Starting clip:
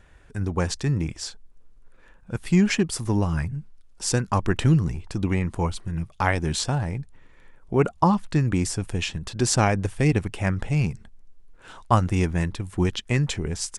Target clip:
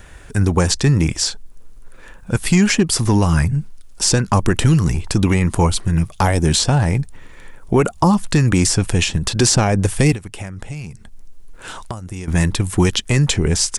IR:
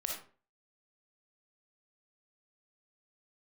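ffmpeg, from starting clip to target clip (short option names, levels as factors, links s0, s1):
-filter_complex "[0:a]acrossover=split=770|5900[s0][s1][s2];[s0]acompressor=threshold=0.0708:ratio=4[s3];[s1]acompressor=threshold=0.02:ratio=4[s4];[s2]acompressor=threshold=0.00562:ratio=4[s5];[s3][s4][s5]amix=inputs=3:normalize=0,highshelf=f=6300:g=11.5,asettb=1/sr,asplit=3[s6][s7][s8];[s6]atrim=end=10.144[s9];[s7]atrim=start=10.14:end=12.28,asetpts=PTS-STARTPTS,afade=t=in:d=0.004:c=qsin,afade=t=out:st=2.136:d=0.004:c=qsin,acompressor=threshold=0.01:ratio=6[s10];[s8]atrim=start=12.276[s11];[s9][s10]acrossfade=d=0.004:c1=hsin:c2=qsin[s12];[s12][s11]acrossfade=d=0.004:c1=qsin:c2=hsin,apsyclip=8.41,volume=0.501"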